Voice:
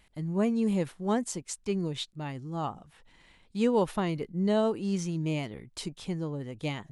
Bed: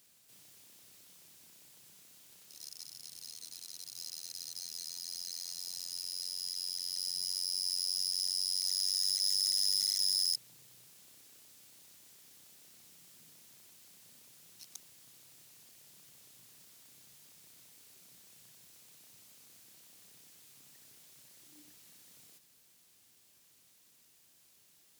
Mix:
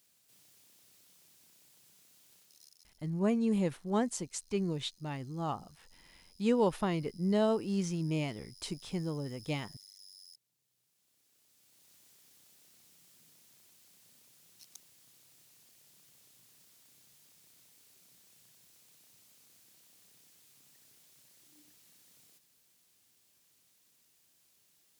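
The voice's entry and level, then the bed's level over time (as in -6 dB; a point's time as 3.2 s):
2.85 s, -2.5 dB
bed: 2.37 s -4.5 dB
3.14 s -24.5 dB
10.49 s -24.5 dB
11.95 s -4 dB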